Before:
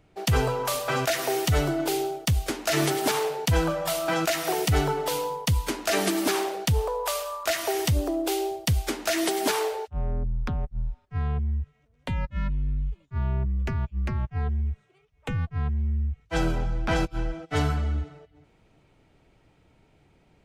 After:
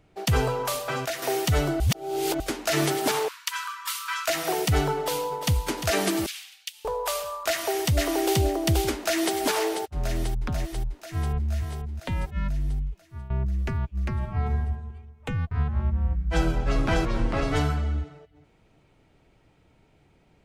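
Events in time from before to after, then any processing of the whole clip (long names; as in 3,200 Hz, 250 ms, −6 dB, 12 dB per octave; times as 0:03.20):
0:00.61–0:01.22: fade out, to −7 dB
0:01.80–0:02.40: reverse
0:03.28–0:04.28: linear-phase brick-wall high-pass 930 Hz
0:04.96–0:05.55: delay throw 350 ms, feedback 45%, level −9 dB
0:06.26–0:06.85: four-pole ladder high-pass 2,200 Hz, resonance 35%
0:07.49–0:08.41: delay throw 480 ms, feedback 20%, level −1 dB
0:08.94–0:09.36: delay throw 490 ms, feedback 70%, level −7.5 dB
0:10.85–0:11.52: delay throw 470 ms, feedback 30%, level −6.5 dB
0:12.76–0:13.30: fade out, to −17 dB
0:14.14–0:14.57: thrown reverb, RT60 1.4 s, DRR 0 dB
0:15.35–0:17.59: delay with pitch and tempo change per echo 161 ms, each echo −3 semitones, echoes 2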